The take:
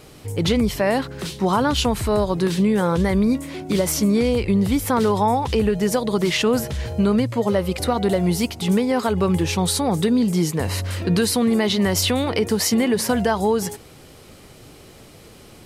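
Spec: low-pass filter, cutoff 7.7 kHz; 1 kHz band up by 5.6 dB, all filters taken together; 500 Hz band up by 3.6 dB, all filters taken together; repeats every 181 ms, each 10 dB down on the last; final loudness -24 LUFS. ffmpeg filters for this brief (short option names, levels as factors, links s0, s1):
-af "lowpass=7700,equalizer=f=500:t=o:g=3,equalizer=f=1000:t=o:g=6,aecho=1:1:181|362|543|724:0.316|0.101|0.0324|0.0104,volume=0.501"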